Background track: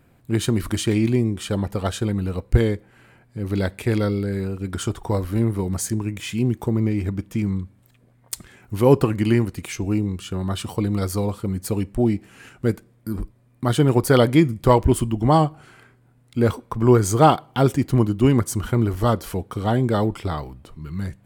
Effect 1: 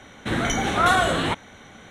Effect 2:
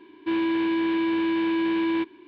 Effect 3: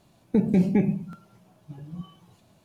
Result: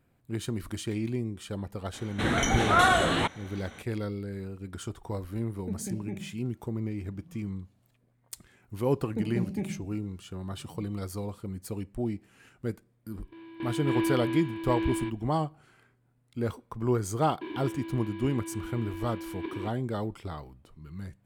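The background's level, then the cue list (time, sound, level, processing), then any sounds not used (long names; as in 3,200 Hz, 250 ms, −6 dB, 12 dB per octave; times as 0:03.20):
background track −12 dB
0:01.93: mix in 1 −2.5 dB
0:05.33: mix in 3 −16.5 dB
0:08.82: mix in 3 −11.5 dB
0:13.06: mix in 2 −3.5 dB + sample-and-hold tremolo 3.7 Hz, depth 90%
0:17.41: mix in 2 −1 dB + compressor whose output falls as the input rises −33 dBFS, ratio −0.5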